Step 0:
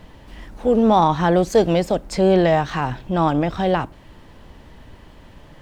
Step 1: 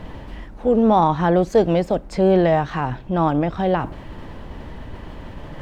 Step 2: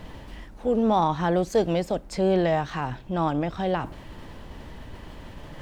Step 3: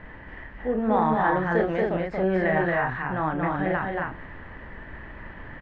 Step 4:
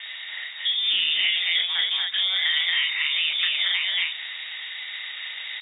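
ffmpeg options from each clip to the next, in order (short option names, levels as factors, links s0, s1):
-af "highshelf=f=3400:g=-11,areverse,acompressor=mode=upward:threshold=0.0708:ratio=2.5,areverse"
-af "highshelf=f=3500:g=10.5,volume=0.473"
-af "lowpass=f=1800:t=q:w=4.4,aecho=1:1:32.07|230.3|271.1:0.501|0.708|0.631,volume=0.596"
-filter_complex "[0:a]acrossover=split=110|1700[s0][s1][s2];[s0]acompressor=threshold=0.00224:ratio=4[s3];[s1]acompressor=threshold=0.0251:ratio=4[s4];[s2]acompressor=threshold=0.0158:ratio=4[s5];[s3][s4][s5]amix=inputs=3:normalize=0,lowpass=f=3200:t=q:w=0.5098,lowpass=f=3200:t=q:w=0.6013,lowpass=f=3200:t=q:w=0.9,lowpass=f=3200:t=q:w=2.563,afreqshift=-3800,volume=2.66"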